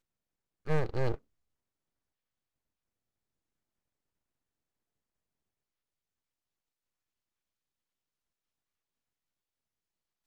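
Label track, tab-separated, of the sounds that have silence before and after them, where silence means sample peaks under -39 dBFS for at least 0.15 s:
0.670000	1.150000	sound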